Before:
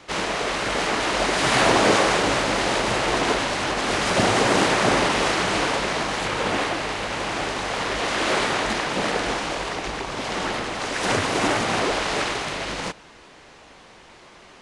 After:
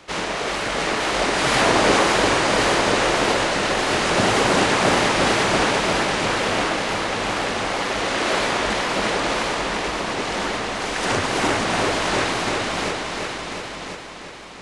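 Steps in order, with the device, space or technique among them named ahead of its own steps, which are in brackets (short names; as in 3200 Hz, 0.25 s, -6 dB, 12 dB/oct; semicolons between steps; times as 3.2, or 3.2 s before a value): multi-head tape echo (multi-head echo 0.346 s, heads all three, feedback 43%, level -8.5 dB; wow and flutter)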